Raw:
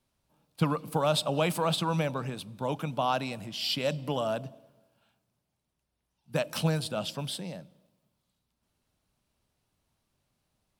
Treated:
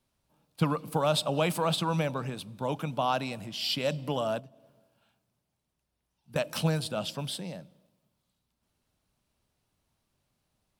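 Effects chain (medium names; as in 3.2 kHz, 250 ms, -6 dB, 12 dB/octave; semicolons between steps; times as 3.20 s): 4.39–6.36 s: compression 12:1, threshold -47 dBFS, peak gain reduction 16 dB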